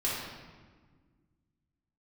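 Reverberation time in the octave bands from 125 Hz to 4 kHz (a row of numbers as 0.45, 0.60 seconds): 2.4, 2.4, 1.6, 1.4, 1.3, 1.0 seconds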